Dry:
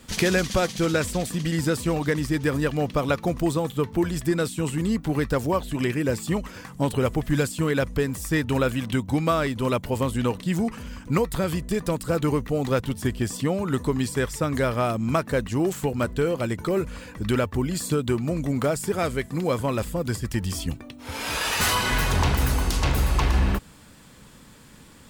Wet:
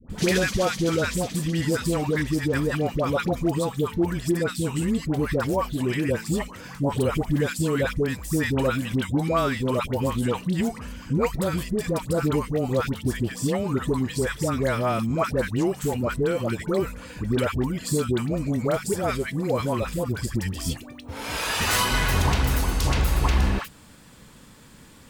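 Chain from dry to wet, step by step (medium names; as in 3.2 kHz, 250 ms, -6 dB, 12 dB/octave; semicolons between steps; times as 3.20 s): phase dispersion highs, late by 100 ms, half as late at 860 Hz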